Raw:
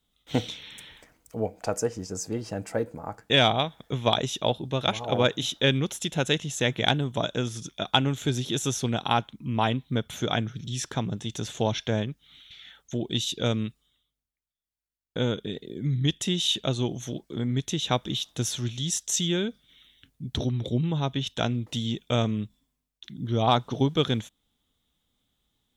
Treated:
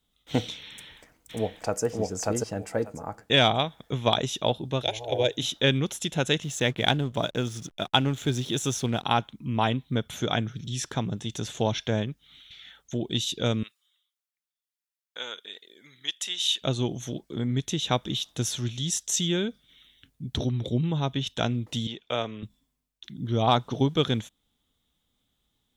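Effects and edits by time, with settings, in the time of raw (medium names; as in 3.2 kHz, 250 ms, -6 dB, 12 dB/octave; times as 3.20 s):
0.70–1.84 s: echo throw 590 ms, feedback 15%, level -0.5 dB
4.82–5.38 s: static phaser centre 500 Hz, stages 4
6.43–9.05 s: hysteresis with a dead band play -44 dBFS
13.63–16.62 s: high-pass 1.1 kHz
21.87–22.43 s: three-band isolator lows -14 dB, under 400 Hz, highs -17 dB, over 5 kHz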